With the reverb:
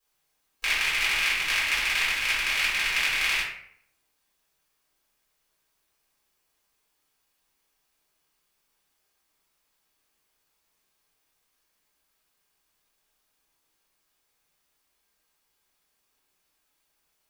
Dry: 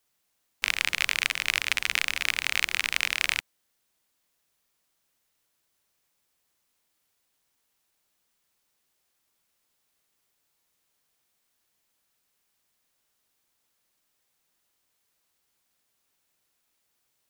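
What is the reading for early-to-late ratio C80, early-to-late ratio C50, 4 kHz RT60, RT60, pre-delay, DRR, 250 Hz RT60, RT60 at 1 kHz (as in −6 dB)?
6.5 dB, 2.5 dB, 0.40 s, 0.65 s, 3 ms, −9.5 dB, 0.70 s, 0.60 s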